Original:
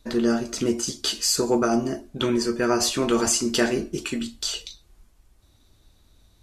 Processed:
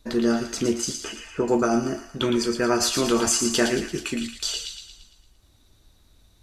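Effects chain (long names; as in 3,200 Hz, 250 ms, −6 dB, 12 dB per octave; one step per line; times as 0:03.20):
0:00.99–0:01.48: Butterworth low-pass 2,800 Hz 72 dB per octave
on a send: delay with a high-pass on its return 114 ms, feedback 51%, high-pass 1,400 Hz, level −6 dB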